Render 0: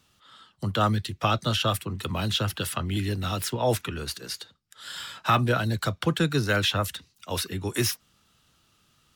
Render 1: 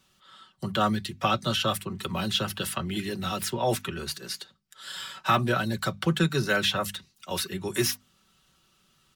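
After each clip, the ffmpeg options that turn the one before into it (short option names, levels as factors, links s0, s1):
-af "bandreject=f=50:t=h:w=6,bandreject=f=100:t=h:w=6,bandreject=f=150:t=h:w=6,bandreject=f=200:t=h:w=6,bandreject=f=250:t=h:w=6,aecho=1:1:5.3:0.56,volume=0.841"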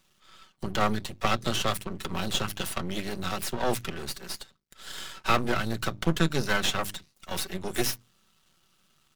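-af "aeval=exprs='max(val(0),0)':c=same,bandreject=f=60:t=h:w=6,bandreject=f=120:t=h:w=6,volume=1.33"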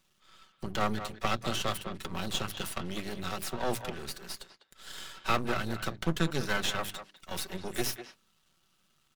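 -filter_complex "[0:a]asplit=2[s0][s1];[s1]adelay=200,highpass=300,lowpass=3400,asoftclip=type=hard:threshold=0.168,volume=0.316[s2];[s0][s2]amix=inputs=2:normalize=0,volume=0.596"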